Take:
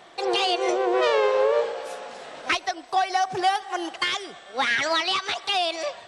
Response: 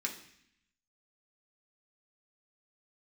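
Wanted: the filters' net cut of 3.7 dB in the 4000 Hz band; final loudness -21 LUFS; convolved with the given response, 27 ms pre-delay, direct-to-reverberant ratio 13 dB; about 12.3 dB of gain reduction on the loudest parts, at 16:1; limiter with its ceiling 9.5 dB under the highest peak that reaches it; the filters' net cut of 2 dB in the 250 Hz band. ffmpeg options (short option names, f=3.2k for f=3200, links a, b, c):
-filter_complex "[0:a]equalizer=f=250:t=o:g=-4,equalizer=f=4k:t=o:g=-5,acompressor=threshold=-30dB:ratio=16,alimiter=level_in=2.5dB:limit=-24dB:level=0:latency=1,volume=-2.5dB,asplit=2[a][b];[1:a]atrim=start_sample=2205,adelay=27[c];[b][c]afir=irnorm=-1:irlink=0,volume=-15dB[d];[a][d]amix=inputs=2:normalize=0,volume=15dB"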